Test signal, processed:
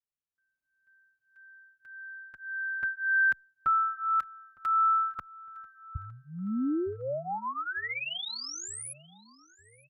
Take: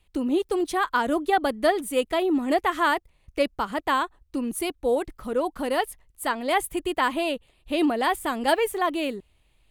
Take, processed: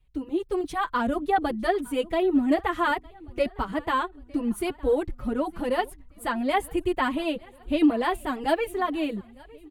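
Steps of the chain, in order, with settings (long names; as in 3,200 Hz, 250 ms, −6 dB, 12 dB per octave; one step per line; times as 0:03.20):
bass and treble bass +11 dB, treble −6 dB
automatic gain control gain up to 7 dB
repeating echo 909 ms, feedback 55%, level −24 dB
barber-pole flanger 5 ms +1.7 Hz
level −6 dB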